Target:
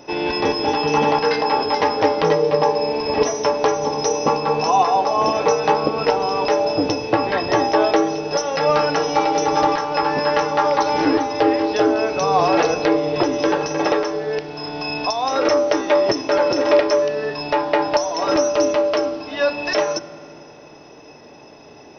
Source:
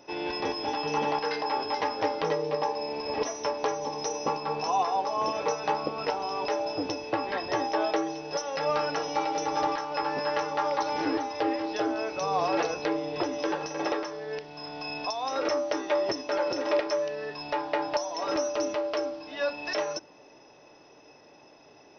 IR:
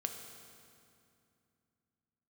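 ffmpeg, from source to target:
-filter_complex "[0:a]asplit=2[s0][s1];[1:a]atrim=start_sample=2205,lowshelf=f=460:g=11.5[s2];[s1][s2]afir=irnorm=-1:irlink=0,volume=0.398[s3];[s0][s3]amix=inputs=2:normalize=0,volume=2.24"

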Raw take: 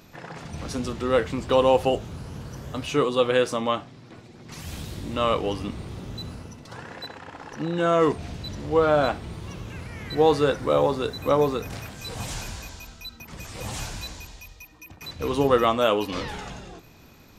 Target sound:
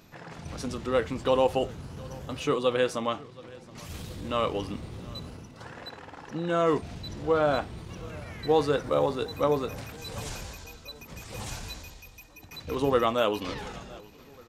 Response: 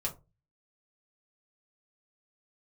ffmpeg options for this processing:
-filter_complex "[0:a]asplit=2[s0][s1];[s1]aecho=0:1:862|1724|2586|3448:0.0794|0.0413|0.0215|0.0112[s2];[s0][s2]amix=inputs=2:normalize=0,atempo=1.2,volume=0.631"

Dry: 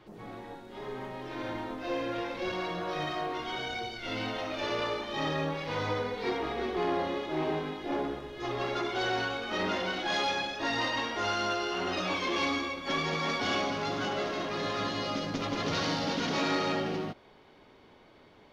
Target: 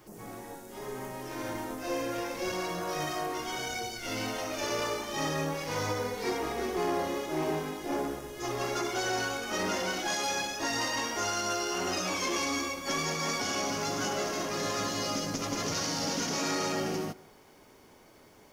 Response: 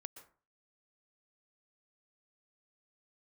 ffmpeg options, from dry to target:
-filter_complex "[0:a]aexciter=amount=14.5:drive=2.6:freq=5600,alimiter=limit=0.0944:level=0:latency=1:release=127,asplit=2[s0][s1];[1:a]atrim=start_sample=2205,lowpass=5400[s2];[s1][s2]afir=irnorm=-1:irlink=0,volume=0.668[s3];[s0][s3]amix=inputs=2:normalize=0,volume=0.75"

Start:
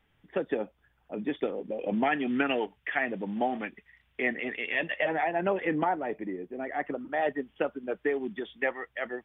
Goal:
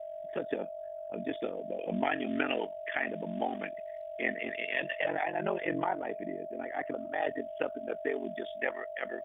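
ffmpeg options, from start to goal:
-af "aeval=exprs='val(0)+0.02*sin(2*PI*640*n/s)':c=same,aeval=exprs='val(0)*sin(2*PI*23*n/s)':c=same,crystalizer=i=2:c=0,volume=0.794"

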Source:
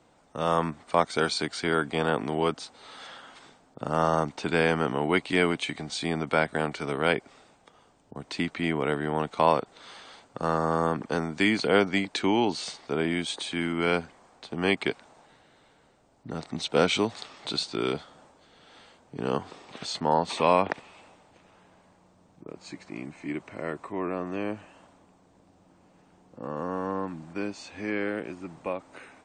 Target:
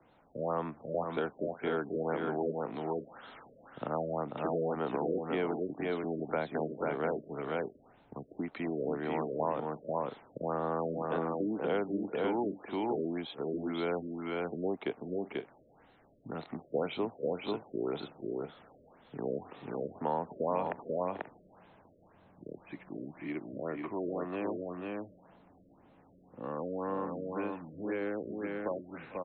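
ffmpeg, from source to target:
-filter_complex "[0:a]aecho=1:1:447|490|535:0.119|0.631|0.112,acrossover=split=120|280|990[s0][s1][s2][s3];[s0]acompressor=threshold=0.00141:ratio=4[s4];[s1]acompressor=threshold=0.00794:ratio=4[s5];[s2]acompressor=threshold=0.0447:ratio=4[s6];[s3]acompressor=threshold=0.01:ratio=4[s7];[s4][s5][s6][s7]amix=inputs=4:normalize=0,afftfilt=real='re*lt(b*sr/1024,620*pow(4300/620,0.5+0.5*sin(2*PI*1.9*pts/sr)))':imag='im*lt(b*sr/1024,620*pow(4300/620,0.5+0.5*sin(2*PI*1.9*pts/sr)))':win_size=1024:overlap=0.75,volume=0.708"

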